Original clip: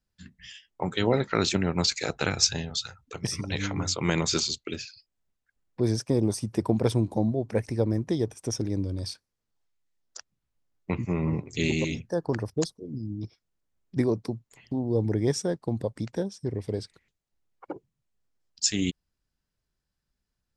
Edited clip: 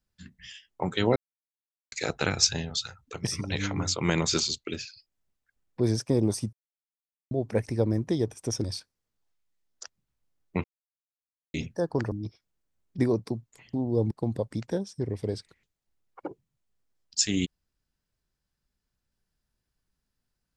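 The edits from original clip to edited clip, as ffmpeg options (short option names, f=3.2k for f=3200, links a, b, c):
-filter_complex "[0:a]asplit=10[a][b][c][d][e][f][g][h][i][j];[a]atrim=end=1.16,asetpts=PTS-STARTPTS,afade=t=out:st=1.156:d=0.004:c=hsin[k];[b]atrim=start=1.16:end=1.92,asetpts=PTS-STARTPTS,volume=0[l];[c]atrim=start=1.92:end=6.53,asetpts=PTS-STARTPTS,afade=t=in:d=0.004:c=hsin,afade=t=out:st=4.606:d=0.004:c=hsin[m];[d]atrim=start=6.53:end=7.31,asetpts=PTS-STARTPTS,volume=0[n];[e]atrim=start=7.31:end=8.642,asetpts=PTS-STARTPTS,afade=t=in:d=0.004:c=hsin[o];[f]atrim=start=8.978:end=10.98,asetpts=PTS-STARTPTS,afade=t=out:st=1.998:d=0.004:c=hsin[p];[g]atrim=start=10.98:end=11.88,asetpts=PTS-STARTPTS,volume=0[q];[h]atrim=start=11.88:end=12.462,asetpts=PTS-STARTPTS,afade=t=in:d=0.004:c=hsin[r];[i]atrim=start=13.098:end=15.092[s];[j]atrim=start=15.558[t];[k][l][m][n][o]concat=n=5:v=0:a=1[u];[p][q][r]concat=n=3:v=0:a=1[v];[u][v]acrossfade=d=0.004:c1=hsin:c2=hsin[w];[w][s]acrossfade=d=0.004:c1=hsin:c2=hsin[x];[x][t]acrossfade=d=0.004:c1=hsin:c2=hsin"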